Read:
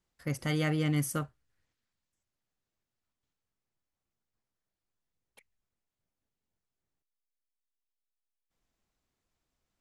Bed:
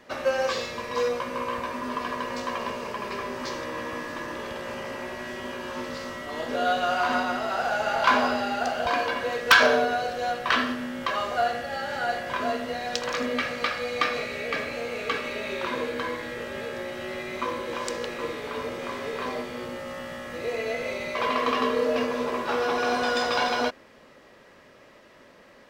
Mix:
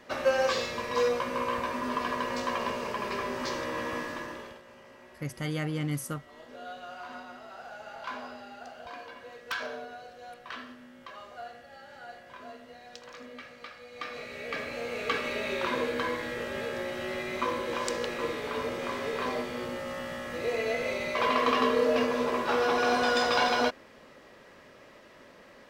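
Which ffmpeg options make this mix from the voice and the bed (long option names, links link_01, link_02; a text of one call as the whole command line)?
ffmpeg -i stem1.wav -i stem2.wav -filter_complex "[0:a]adelay=4950,volume=-2.5dB[link_01];[1:a]volume=17dB,afade=type=out:start_time=3.98:duration=0.64:silence=0.133352,afade=type=in:start_time=13.9:duration=1.41:silence=0.133352[link_02];[link_01][link_02]amix=inputs=2:normalize=0" out.wav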